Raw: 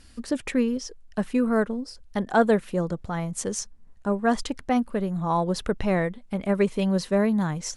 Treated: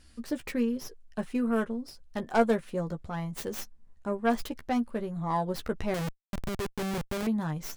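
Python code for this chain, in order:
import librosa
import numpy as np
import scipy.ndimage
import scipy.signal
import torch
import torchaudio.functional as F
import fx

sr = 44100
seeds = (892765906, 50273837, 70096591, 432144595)

y = fx.tracing_dist(x, sr, depth_ms=0.28)
y = fx.doubler(y, sr, ms=13.0, db=-7)
y = fx.schmitt(y, sr, flips_db=-25.5, at=(5.94, 7.27))
y = F.gain(torch.from_numpy(y), -6.5).numpy()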